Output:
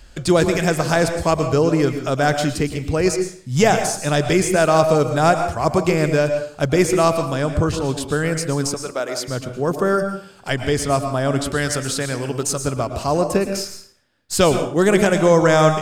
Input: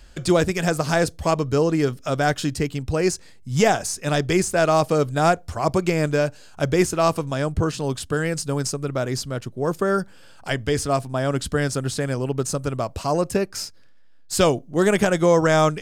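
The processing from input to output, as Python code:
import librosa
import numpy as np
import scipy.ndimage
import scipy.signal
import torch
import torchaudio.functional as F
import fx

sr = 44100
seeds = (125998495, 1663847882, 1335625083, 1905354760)

y = fx.highpass(x, sr, hz=430.0, slope=12, at=(8.74, 9.28))
y = fx.tilt_shelf(y, sr, db=-4.0, hz=1100.0, at=(11.46, 12.62))
y = fx.rev_plate(y, sr, seeds[0], rt60_s=0.51, hf_ratio=0.8, predelay_ms=100, drr_db=7.0)
y = y * 10.0 ** (2.5 / 20.0)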